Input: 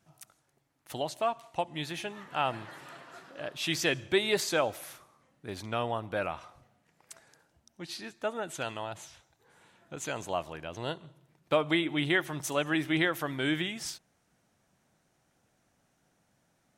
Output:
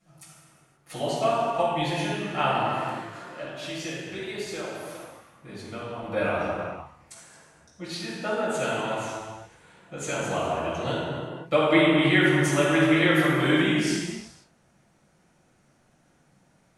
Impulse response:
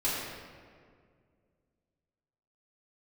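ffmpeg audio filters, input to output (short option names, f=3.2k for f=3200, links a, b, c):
-filter_complex "[0:a]asettb=1/sr,asplit=3[a][b][c];[a]atrim=end=3.424[d];[b]atrim=start=3.42:end=6.03,asetpts=PTS-STARTPTS,afade=t=in:d=0.004:c=qsin,afade=t=out:st=2.606:d=0.004:c=qsin,acompressor=threshold=-46dB:ratio=2.5[e];[c]atrim=start=6.026[f];[d][e]acrossfade=d=0.004:c1=hsin:c2=qsin[g];[g][f]acrossfade=d=0.004:c1=qsin:c2=hsin[h];[1:a]atrim=start_sample=2205,afade=t=out:st=0.34:d=0.01,atrim=end_sample=15435,asetrate=23814,aresample=44100[i];[h][i]afir=irnorm=-1:irlink=0,volume=-5dB"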